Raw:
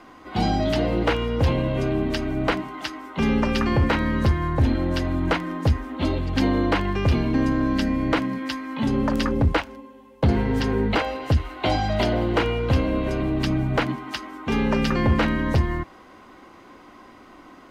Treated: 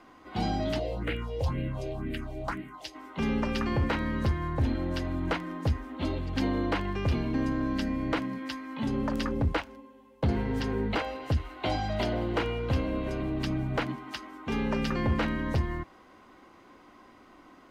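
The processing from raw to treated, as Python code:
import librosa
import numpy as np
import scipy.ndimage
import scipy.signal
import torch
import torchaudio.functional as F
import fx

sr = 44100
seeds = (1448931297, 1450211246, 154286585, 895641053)

y = fx.phaser_stages(x, sr, stages=4, low_hz=210.0, high_hz=1000.0, hz=2.0, feedback_pct=25, at=(0.78, 2.94), fade=0.02)
y = y * librosa.db_to_amplitude(-7.5)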